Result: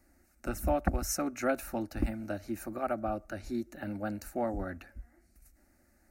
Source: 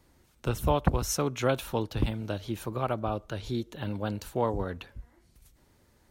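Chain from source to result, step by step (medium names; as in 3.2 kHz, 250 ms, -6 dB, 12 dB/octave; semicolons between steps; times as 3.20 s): static phaser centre 670 Hz, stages 8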